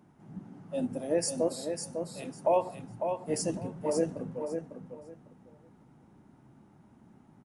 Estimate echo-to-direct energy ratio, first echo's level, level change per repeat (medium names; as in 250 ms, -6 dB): -6.5 dB, -6.5 dB, -14.0 dB